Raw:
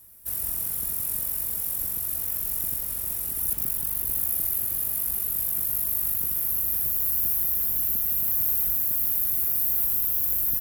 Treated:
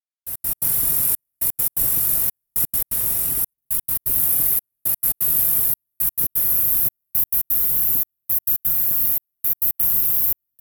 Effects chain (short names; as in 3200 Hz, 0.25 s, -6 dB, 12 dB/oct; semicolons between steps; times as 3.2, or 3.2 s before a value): comb 7.3 ms, depth 75%; AGC gain up to 11.5 dB; step gate "...x.x.xxxxxx" 170 bpm -60 dB; gain -2 dB